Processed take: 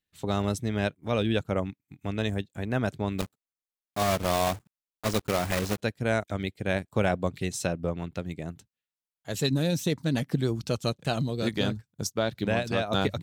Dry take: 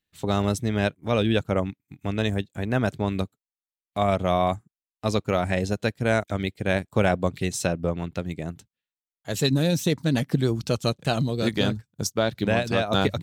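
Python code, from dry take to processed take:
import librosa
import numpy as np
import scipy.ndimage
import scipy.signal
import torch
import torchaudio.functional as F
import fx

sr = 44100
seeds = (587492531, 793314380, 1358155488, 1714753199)

y = fx.block_float(x, sr, bits=3, at=(3.18, 5.8), fade=0.02)
y = y * 10.0 ** (-4.0 / 20.0)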